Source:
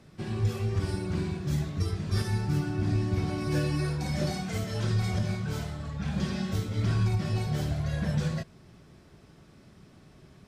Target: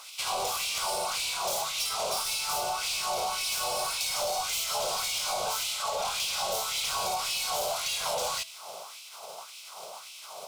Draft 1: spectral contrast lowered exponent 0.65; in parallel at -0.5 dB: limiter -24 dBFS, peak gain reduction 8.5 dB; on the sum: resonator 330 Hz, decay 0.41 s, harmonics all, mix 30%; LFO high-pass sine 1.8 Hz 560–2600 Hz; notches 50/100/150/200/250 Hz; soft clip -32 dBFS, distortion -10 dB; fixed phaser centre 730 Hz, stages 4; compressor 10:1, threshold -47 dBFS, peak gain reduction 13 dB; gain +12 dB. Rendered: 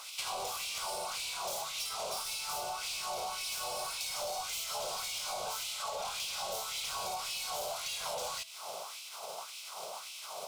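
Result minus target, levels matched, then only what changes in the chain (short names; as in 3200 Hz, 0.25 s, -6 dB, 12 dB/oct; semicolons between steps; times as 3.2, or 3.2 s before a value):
compressor: peak gain reduction +7 dB
change: compressor 10:1, threshold -39 dBFS, peak gain reduction 6 dB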